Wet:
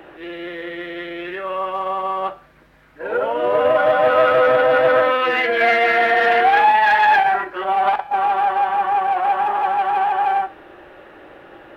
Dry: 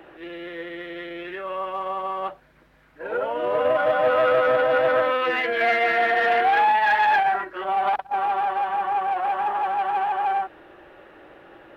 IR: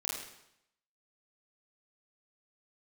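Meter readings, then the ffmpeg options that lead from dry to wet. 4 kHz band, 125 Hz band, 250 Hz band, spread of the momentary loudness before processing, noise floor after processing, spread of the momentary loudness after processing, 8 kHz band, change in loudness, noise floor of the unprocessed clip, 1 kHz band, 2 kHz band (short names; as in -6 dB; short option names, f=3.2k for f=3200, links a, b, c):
+5.5 dB, +5.0 dB, +5.0 dB, 16 LU, -46 dBFS, 16 LU, n/a, +5.0 dB, -54 dBFS, +5.0 dB, +5.0 dB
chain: -filter_complex "[0:a]bandreject=f=167.5:t=h:w=4,bandreject=f=335:t=h:w=4,bandreject=f=502.5:t=h:w=4,bandreject=f=670:t=h:w=4,bandreject=f=837.5:t=h:w=4,bandreject=f=1.005k:t=h:w=4,bandreject=f=1.1725k:t=h:w=4,bandreject=f=1.34k:t=h:w=4,bandreject=f=1.5075k:t=h:w=4,bandreject=f=1.675k:t=h:w=4,bandreject=f=1.8425k:t=h:w=4,bandreject=f=2.01k:t=h:w=4,bandreject=f=2.1775k:t=h:w=4,bandreject=f=2.345k:t=h:w=4,bandreject=f=2.5125k:t=h:w=4,bandreject=f=2.68k:t=h:w=4,bandreject=f=2.8475k:t=h:w=4,bandreject=f=3.015k:t=h:w=4,bandreject=f=3.1825k:t=h:w=4,bandreject=f=3.35k:t=h:w=4,bandreject=f=3.5175k:t=h:w=4,bandreject=f=3.685k:t=h:w=4,bandreject=f=3.8525k:t=h:w=4,bandreject=f=4.02k:t=h:w=4,bandreject=f=4.1875k:t=h:w=4,bandreject=f=4.355k:t=h:w=4,bandreject=f=4.5225k:t=h:w=4,bandreject=f=4.69k:t=h:w=4,bandreject=f=4.8575k:t=h:w=4,bandreject=f=5.025k:t=h:w=4,bandreject=f=5.1925k:t=h:w=4,bandreject=f=5.36k:t=h:w=4,bandreject=f=5.5275k:t=h:w=4,bandreject=f=5.695k:t=h:w=4,asplit=2[a][b];[1:a]atrim=start_sample=2205,asetrate=83790,aresample=44100[c];[b][c]afir=irnorm=-1:irlink=0,volume=-11dB[d];[a][d]amix=inputs=2:normalize=0,volume=4.5dB"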